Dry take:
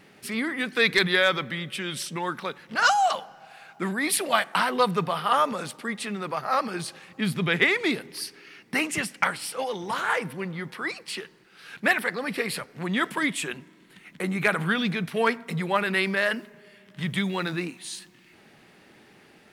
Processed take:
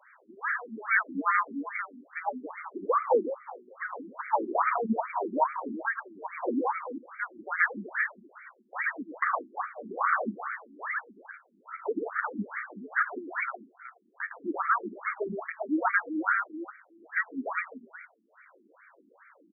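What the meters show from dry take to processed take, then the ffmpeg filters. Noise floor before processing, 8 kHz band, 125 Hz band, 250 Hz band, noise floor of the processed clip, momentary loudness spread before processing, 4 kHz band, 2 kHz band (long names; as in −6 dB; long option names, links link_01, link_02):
−56 dBFS, below −40 dB, below −15 dB, −6.0 dB, −64 dBFS, 13 LU, below −40 dB, −4.5 dB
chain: -af "highpass=frequency=160:width_type=q:width=0.5412,highpass=frequency=160:width_type=q:width=1.307,lowpass=frequency=3200:width_type=q:width=0.5176,lowpass=frequency=3200:width_type=q:width=0.7071,lowpass=frequency=3200:width_type=q:width=1.932,afreqshift=-280,aecho=1:1:109|149|371:0.562|0.141|0.266,alimiter=limit=-14dB:level=0:latency=1:release=68,afftfilt=real='re*between(b*sr/1024,260*pow(1700/260,0.5+0.5*sin(2*PI*2.4*pts/sr))/1.41,260*pow(1700/260,0.5+0.5*sin(2*PI*2.4*pts/sr))*1.41)':imag='im*between(b*sr/1024,260*pow(1700/260,0.5+0.5*sin(2*PI*2.4*pts/sr))/1.41,260*pow(1700/260,0.5+0.5*sin(2*PI*2.4*pts/sr))*1.41)':win_size=1024:overlap=0.75,volume=3.5dB"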